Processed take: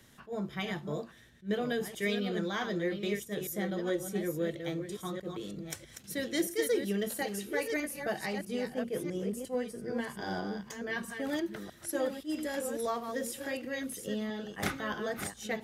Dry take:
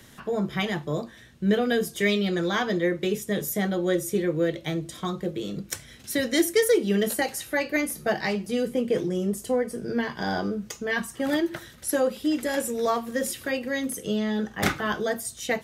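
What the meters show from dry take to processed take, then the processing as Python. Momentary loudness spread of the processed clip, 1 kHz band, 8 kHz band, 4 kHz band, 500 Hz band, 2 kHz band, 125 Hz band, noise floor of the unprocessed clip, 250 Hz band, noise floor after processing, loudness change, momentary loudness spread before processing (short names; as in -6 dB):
7 LU, -8.5 dB, -8.5 dB, -8.5 dB, -8.5 dB, -8.5 dB, -8.5 dB, -49 dBFS, -8.5 dB, -55 dBFS, -8.5 dB, 8 LU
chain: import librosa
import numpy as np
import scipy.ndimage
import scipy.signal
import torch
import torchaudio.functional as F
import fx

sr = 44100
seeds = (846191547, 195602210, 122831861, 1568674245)

y = fx.reverse_delay(x, sr, ms=650, wet_db=-7.0)
y = fx.attack_slew(y, sr, db_per_s=320.0)
y = y * 10.0 ** (-9.0 / 20.0)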